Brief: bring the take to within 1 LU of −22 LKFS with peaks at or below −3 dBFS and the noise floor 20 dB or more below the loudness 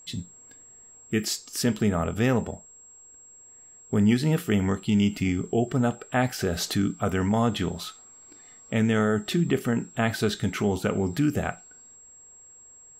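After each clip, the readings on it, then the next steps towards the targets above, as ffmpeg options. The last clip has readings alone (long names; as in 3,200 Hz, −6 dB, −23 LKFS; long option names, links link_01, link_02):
interfering tone 7,600 Hz; level of the tone −48 dBFS; integrated loudness −26.0 LKFS; sample peak −11.0 dBFS; target loudness −22.0 LKFS
→ -af "bandreject=frequency=7600:width=30"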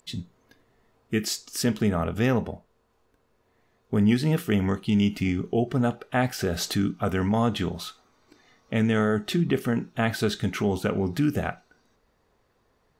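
interfering tone none found; integrated loudness −26.0 LKFS; sample peak −10.5 dBFS; target loudness −22.0 LKFS
→ -af "volume=4dB"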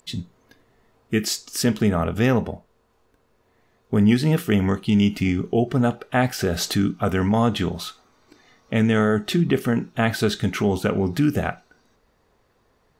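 integrated loudness −22.0 LKFS; sample peak −6.5 dBFS; background noise floor −64 dBFS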